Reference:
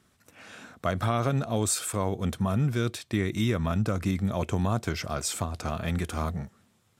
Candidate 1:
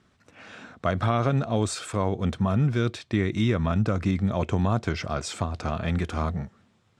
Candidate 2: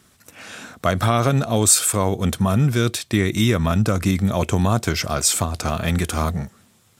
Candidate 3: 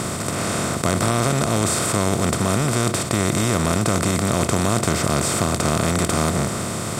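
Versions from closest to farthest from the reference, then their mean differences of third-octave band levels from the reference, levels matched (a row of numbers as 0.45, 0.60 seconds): 2, 1, 3; 1.5, 2.5, 11.0 decibels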